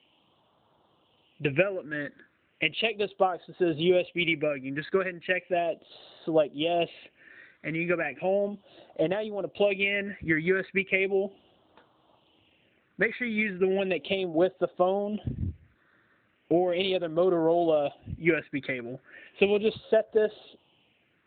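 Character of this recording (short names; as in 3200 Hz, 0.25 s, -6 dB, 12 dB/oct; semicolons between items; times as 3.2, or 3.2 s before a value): phasing stages 6, 0.36 Hz, lowest notch 760–2300 Hz; AMR-NB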